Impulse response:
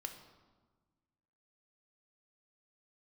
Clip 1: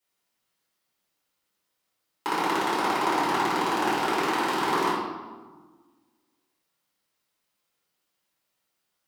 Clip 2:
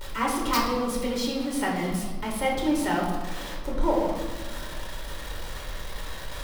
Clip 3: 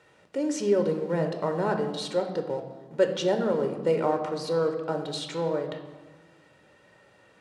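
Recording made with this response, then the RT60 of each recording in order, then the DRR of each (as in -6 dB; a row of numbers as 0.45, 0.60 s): 3; 1.4, 1.4, 1.4 s; -10.0, -3.5, 5.0 dB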